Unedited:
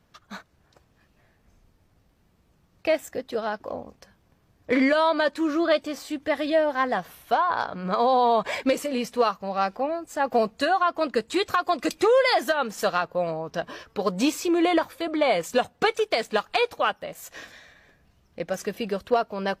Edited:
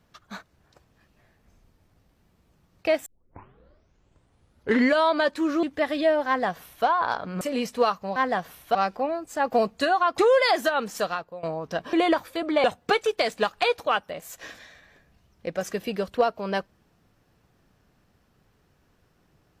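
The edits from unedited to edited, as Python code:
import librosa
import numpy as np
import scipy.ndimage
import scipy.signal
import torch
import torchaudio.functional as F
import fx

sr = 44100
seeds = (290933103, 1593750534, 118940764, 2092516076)

y = fx.edit(x, sr, fx.tape_start(start_s=3.06, length_s=1.88),
    fx.cut(start_s=5.63, length_s=0.49),
    fx.duplicate(start_s=6.76, length_s=0.59, to_s=9.55),
    fx.cut(start_s=7.9, length_s=0.9),
    fx.cut(start_s=10.98, length_s=1.03),
    fx.fade_out_to(start_s=12.7, length_s=0.56, floor_db=-19.5),
    fx.cut(start_s=13.76, length_s=0.82),
    fx.cut(start_s=15.29, length_s=0.28), tone=tone)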